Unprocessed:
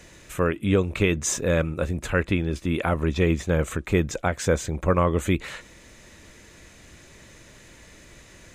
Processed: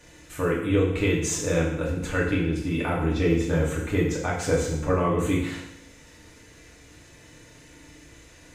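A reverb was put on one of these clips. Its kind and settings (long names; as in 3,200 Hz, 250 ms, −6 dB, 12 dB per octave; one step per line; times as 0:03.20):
feedback delay network reverb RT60 0.85 s, low-frequency decay 1.05×, high-frequency decay 0.95×, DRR −5 dB
level −7.5 dB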